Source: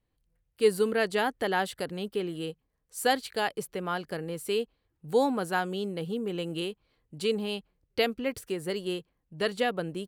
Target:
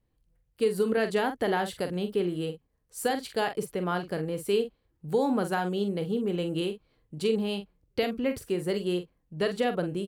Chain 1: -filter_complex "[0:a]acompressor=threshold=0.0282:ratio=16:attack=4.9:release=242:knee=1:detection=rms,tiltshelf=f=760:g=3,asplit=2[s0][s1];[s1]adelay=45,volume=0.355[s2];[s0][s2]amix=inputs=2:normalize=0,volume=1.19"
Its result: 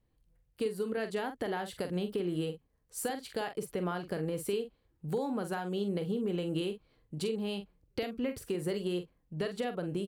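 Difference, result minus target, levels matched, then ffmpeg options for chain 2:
compression: peak gain reduction +8.5 dB
-filter_complex "[0:a]acompressor=threshold=0.0794:ratio=16:attack=4.9:release=242:knee=1:detection=rms,tiltshelf=f=760:g=3,asplit=2[s0][s1];[s1]adelay=45,volume=0.355[s2];[s0][s2]amix=inputs=2:normalize=0,volume=1.19"

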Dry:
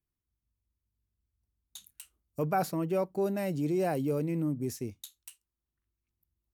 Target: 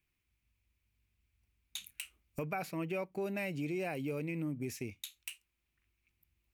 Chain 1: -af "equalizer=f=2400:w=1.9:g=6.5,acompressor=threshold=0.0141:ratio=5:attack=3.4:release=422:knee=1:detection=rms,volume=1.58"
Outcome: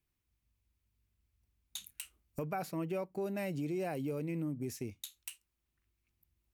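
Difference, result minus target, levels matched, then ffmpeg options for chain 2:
2 kHz band -6.0 dB
-af "equalizer=f=2400:w=1.9:g=16.5,acompressor=threshold=0.0141:ratio=5:attack=3.4:release=422:knee=1:detection=rms,volume=1.58"

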